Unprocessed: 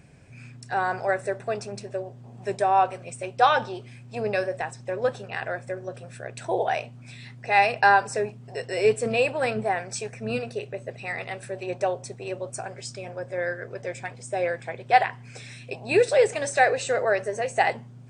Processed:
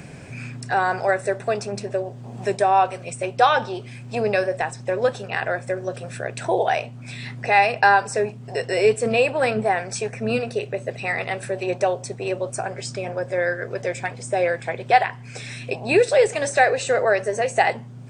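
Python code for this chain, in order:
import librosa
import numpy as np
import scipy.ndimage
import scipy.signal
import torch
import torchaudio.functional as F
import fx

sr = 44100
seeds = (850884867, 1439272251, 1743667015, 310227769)

y = fx.band_squash(x, sr, depth_pct=40)
y = F.gain(torch.from_numpy(y), 4.5).numpy()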